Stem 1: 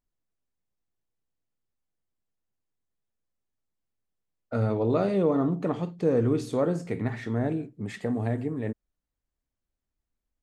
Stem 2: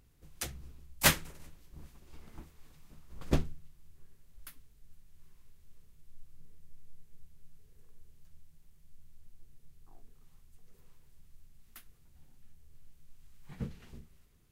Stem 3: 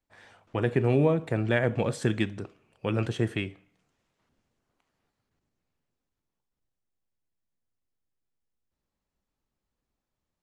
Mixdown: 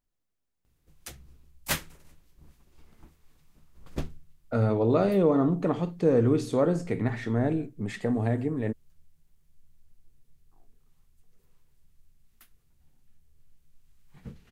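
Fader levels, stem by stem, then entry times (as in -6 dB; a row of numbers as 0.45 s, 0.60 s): +1.5 dB, -4.5 dB, mute; 0.00 s, 0.65 s, mute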